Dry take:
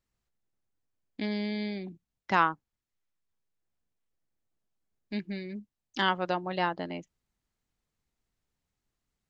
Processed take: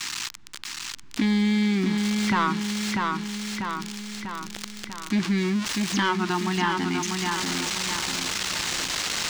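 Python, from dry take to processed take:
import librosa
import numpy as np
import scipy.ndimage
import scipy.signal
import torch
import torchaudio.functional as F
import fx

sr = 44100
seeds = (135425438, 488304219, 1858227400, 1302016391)

y = x + 0.5 * 10.0 ** (-24.0 / 20.0) * np.diff(np.sign(x), prepend=np.sign(x[:1]))
y = fx.recorder_agc(y, sr, target_db=-15.5, rise_db_per_s=10.0, max_gain_db=30)
y = scipy.signal.sosfilt(scipy.signal.cheby1(2, 1.0, [340.0, 940.0], 'bandstop', fs=sr, output='sos'), y)
y = np.clip(y, -10.0 ** (-22.0 / 20.0), 10.0 ** (-22.0 / 20.0))
y = fx.air_absorb(y, sr, metres=140.0)
y = fx.echo_feedback(y, sr, ms=644, feedback_pct=40, wet_db=-6.5)
y = fx.env_flatten(y, sr, amount_pct=50)
y = y * librosa.db_to_amplitude(4.0)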